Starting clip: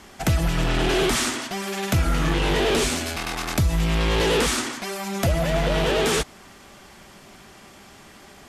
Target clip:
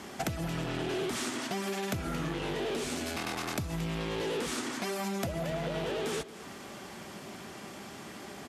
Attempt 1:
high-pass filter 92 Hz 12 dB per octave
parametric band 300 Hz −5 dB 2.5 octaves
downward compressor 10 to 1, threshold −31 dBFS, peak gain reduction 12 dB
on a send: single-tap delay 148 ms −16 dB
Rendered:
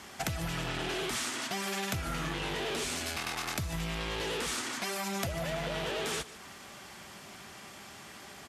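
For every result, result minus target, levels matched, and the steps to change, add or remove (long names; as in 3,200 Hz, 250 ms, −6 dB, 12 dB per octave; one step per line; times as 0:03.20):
echo 78 ms early; 250 Hz band −5.5 dB
change: single-tap delay 226 ms −16 dB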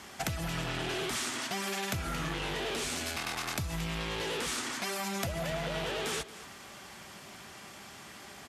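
250 Hz band −5.5 dB
change: parametric band 300 Hz +4.5 dB 2.5 octaves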